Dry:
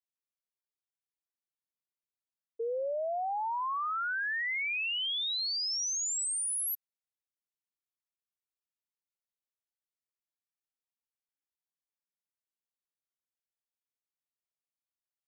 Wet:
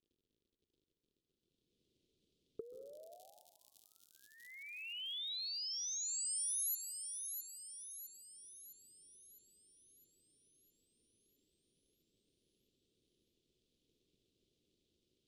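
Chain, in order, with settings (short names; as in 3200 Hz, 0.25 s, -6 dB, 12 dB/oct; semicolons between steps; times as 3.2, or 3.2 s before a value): recorder AGC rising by 16 dB/s; crackle 89/s -51 dBFS; low-pass opened by the level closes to 1200 Hz, open at -32.5 dBFS; elliptic band-stop 400–3400 Hz, stop band 60 dB; low shelf 440 Hz -9 dB; compressor 2.5:1, threshold -57 dBFS, peak gain reduction 16.5 dB; high shelf 8800 Hz +9 dB; thin delay 0.659 s, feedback 51%, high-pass 5200 Hz, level -6.5 dB; plate-style reverb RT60 1.2 s, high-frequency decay 0.3×, pre-delay 0.12 s, DRR 9.5 dB; gain +5 dB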